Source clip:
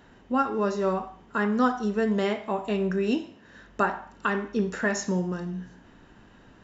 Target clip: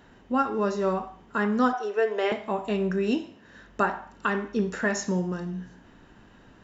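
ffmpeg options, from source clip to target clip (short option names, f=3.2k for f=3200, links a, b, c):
-filter_complex "[0:a]asettb=1/sr,asplit=3[a][b][c];[a]atrim=end=1.734[d];[b]atrim=start=1.73:end=2.32,asetpts=PTS-STARTPTS,afade=t=in:d=0.004:c=qsin,afade=t=out:st=0.586:d=0.004:c=qsin,highpass=f=400:w=0.5412,highpass=f=400:w=1.3066,equalizer=f=430:t=q:w=4:g=5,equalizer=f=730:t=q:w=4:g=5,equalizer=f=1.6k:t=q:w=4:g=3,equalizer=f=2.5k:t=q:w=4:g=5,equalizer=f=4.3k:t=q:w=4:g=-6,lowpass=f=6.2k:w=0.5412,lowpass=f=6.2k:w=1.3066[e];[c]atrim=start=2.316[f];[d][e]acrossfade=d=0.004:c1=hsin:c2=qsin[g];[g][f]acrossfade=d=0.004:c1=qsin:c2=hsin"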